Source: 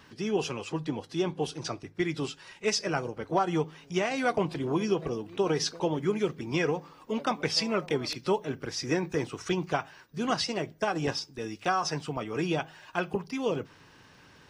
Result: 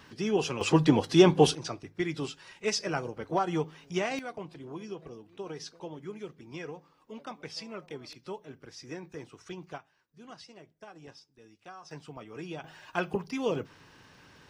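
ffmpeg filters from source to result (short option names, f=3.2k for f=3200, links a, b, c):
-af "asetnsamples=n=441:p=0,asendcmd='0.61 volume volume 10.5dB;1.55 volume volume -2dB;4.19 volume volume -13dB;9.78 volume volume -20dB;11.91 volume volume -11dB;12.64 volume volume -0.5dB',volume=1dB"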